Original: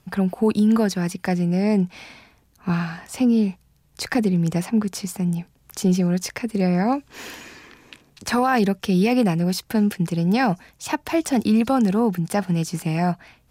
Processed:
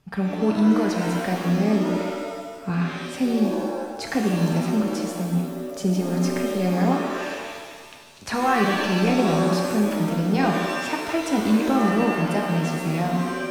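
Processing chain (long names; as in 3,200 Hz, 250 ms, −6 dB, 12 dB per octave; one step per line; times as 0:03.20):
high-shelf EQ 8,700 Hz −10.5 dB
reverb with rising layers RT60 1.4 s, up +7 semitones, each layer −2 dB, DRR 2 dB
level −4 dB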